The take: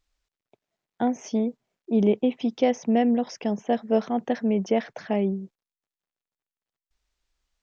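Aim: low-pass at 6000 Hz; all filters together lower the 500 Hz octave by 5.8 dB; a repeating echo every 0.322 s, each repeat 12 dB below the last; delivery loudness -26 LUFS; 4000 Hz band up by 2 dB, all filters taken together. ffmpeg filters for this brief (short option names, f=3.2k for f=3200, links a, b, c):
-af "lowpass=6k,equalizer=f=500:t=o:g=-7,equalizer=f=4k:t=o:g=4,aecho=1:1:322|644|966:0.251|0.0628|0.0157,volume=1.5dB"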